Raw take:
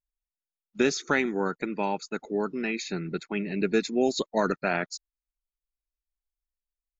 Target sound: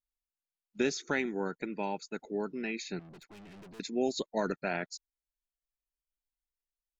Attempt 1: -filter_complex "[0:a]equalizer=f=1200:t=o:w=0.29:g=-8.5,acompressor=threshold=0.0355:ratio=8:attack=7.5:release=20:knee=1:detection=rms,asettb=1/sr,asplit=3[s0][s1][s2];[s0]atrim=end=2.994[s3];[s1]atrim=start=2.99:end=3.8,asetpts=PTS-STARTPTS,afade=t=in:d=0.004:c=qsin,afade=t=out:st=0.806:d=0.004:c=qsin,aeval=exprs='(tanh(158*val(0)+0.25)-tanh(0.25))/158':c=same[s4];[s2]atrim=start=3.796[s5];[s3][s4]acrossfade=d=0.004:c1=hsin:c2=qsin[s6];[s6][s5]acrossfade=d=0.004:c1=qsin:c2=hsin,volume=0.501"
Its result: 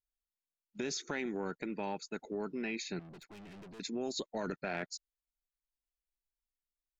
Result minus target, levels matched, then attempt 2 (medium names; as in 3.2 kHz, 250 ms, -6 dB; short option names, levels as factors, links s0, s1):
compression: peak gain reduction +10.5 dB
-filter_complex "[0:a]equalizer=f=1200:t=o:w=0.29:g=-8.5,asettb=1/sr,asplit=3[s0][s1][s2];[s0]atrim=end=2.994[s3];[s1]atrim=start=2.99:end=3.8,asetpts=PTS-STARTPTS,afade=t=in:d=0.004:c=qsin,afade=t=out:st=0.806:d=0.004:c=qsin,aeval=exprs='(tanh(158*val(0)+0.25)-tanh(0.25))/158':c=same[s4];[s2]atrim=start=3.796[s5];[s3][s4]acrossfade=d=0.004:c1=hsin:c2=qsin[s6];[s6][s5]acrossfade=d=0.004:c1=qsin:c2=hsin,volume=0.501"